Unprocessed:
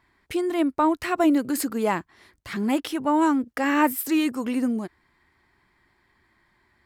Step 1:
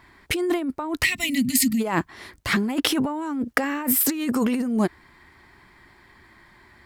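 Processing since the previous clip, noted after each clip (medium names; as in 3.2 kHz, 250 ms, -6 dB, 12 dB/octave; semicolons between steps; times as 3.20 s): time-frequency box 1.04–1.80 s, 260–1800 Hz -29 dB; compressor with a negative ratio -30 dBFS, ratio -1; trim +6.5 dB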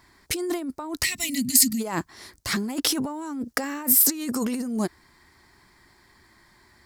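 resonant high shelf 3.9 kHz +8 dB, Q 1.5; trim -4.5 dB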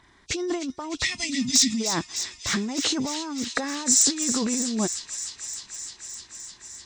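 knee-point frequency compression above 2.4 kHz 1.5:1; wavefolder -9.5 dBFS; feedback echo behind a high-pass 304 ms, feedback 81%, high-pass 2.4 kHz, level -9 dB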